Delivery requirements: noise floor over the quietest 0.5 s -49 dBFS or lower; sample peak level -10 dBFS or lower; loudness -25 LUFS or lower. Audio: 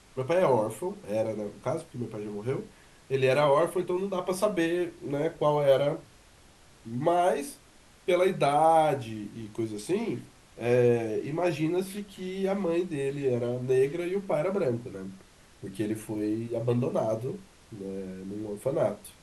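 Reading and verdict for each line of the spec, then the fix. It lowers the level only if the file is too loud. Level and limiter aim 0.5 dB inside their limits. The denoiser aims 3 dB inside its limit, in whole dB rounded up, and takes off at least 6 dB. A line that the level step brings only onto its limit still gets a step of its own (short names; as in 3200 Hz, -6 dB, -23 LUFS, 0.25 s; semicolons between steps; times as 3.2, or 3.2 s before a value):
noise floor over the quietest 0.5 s -56 dBFS: OK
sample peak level -11.0 dBFS: OK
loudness -28.5 LUFS: OK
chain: none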